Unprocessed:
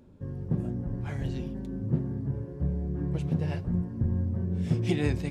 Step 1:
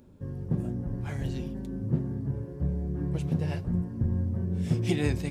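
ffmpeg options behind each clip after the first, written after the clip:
-af "highshelf=f=7200:g=9"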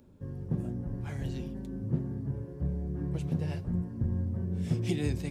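-filter_complex "[0:a]acrossover=split=470|3000[s0][s1][s2];[s1]acompressor=threshold=0.00891:ratio=6[s3];[s0][s3][s2]amix=inputs=3:normalize=0,volume=0.708"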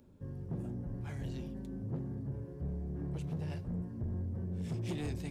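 -af "asoftclip=type=tanh:threshold=0.0355,volume=0.708"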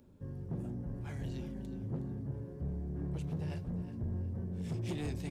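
-af "aecho=1:1:366|732|1098:0.2|0.0619|0.0192"

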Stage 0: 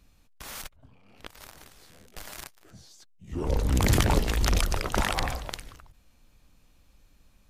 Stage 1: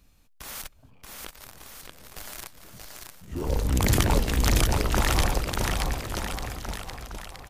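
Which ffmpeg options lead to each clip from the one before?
-filter_complex "[0:a]highshelf=f=9600:g=5.5,asplit=2[s0][s1];[s1]aecho=0:1:630|1197|1707|2167|2580:0.631|0.398|0.251|0.158|0.1[s2];[s0][s2]amix=inputs=2:normalize=0"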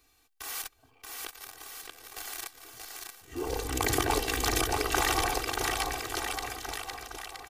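-filter_complex "[0:a]aecho=1:1:2.6:0.98,acrossover=split=1300[s0][s1];[s0]aemphasis=mode=production:type=riaa[s2];[s1]alimiter=limit=0.2:level=0:latency=1:release=141[s3];[s2][s3]amix=inputs=2:normalize=0,volume=0.841"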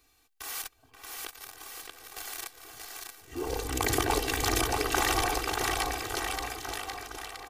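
-filter_complex "[0:a]asplit=2[s0][s1];[s1]adelay=530.6,volume=0.398,highshelf=f=4000:g=-11.9[s2];[s0][s2]amix=inputs=2:normalize=0"

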